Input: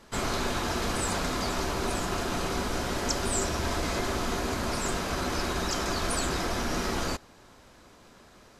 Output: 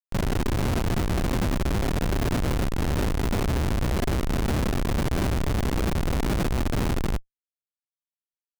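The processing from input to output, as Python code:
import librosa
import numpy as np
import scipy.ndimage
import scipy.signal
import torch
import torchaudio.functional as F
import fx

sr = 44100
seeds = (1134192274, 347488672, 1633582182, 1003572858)

p1 = scipy.signal.medfilt(x, 25)
p2 = fx.over_compress(p1, sr, threshold_db=-43.0, ratio=-1.0)
p3 = p1 + F.gain(torch.from_numpy(p2), 0.0).numpy()
p4 = fx.schmitt(p3, sr, flips_db=-28.5)
y = F.gain(torch.from_numpy(p4), 7.0).numpy()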